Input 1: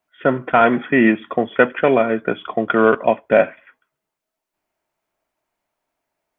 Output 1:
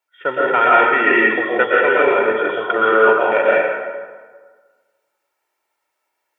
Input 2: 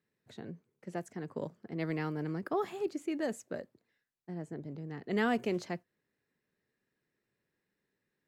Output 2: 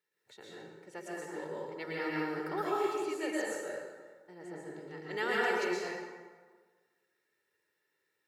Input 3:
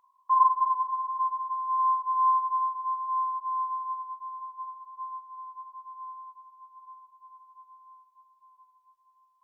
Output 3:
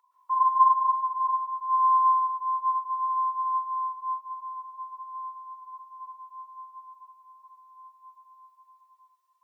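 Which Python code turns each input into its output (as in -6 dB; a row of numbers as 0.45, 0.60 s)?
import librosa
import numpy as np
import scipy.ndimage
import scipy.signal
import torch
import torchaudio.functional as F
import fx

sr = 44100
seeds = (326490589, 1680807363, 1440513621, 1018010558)

y = fx.highpass(x, sr, hz=950.0, slope=6)
y = y + 0.59 * np.pad(y, (int(2.2 * sr / 1000.0), 0))[:len(y)]
y = fx.rev_plate(y, sr, seeds[0], rt60_s=1.5, hf_ratio=0.6, predelay_ms=105, drr_db=-6.0)
y = F.gain(torch.from_numpy(y), -1.0).numpy()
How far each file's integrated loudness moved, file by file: +2.5, +1.0, +2.5 LU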